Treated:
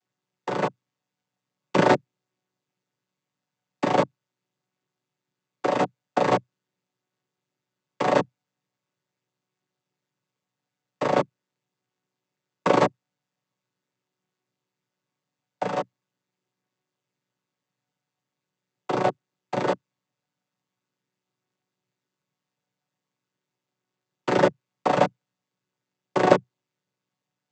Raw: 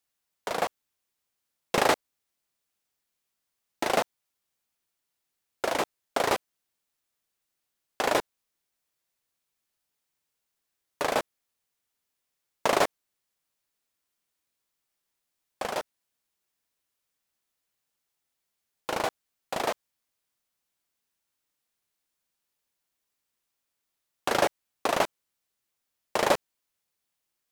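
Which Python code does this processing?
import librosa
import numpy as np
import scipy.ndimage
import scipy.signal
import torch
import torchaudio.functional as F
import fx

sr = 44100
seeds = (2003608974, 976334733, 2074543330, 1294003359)

y = fx.chord_vocoder(x, sr, chord='minor triad', root=47)
y = y * librosa.db_to_amplitude(6.0)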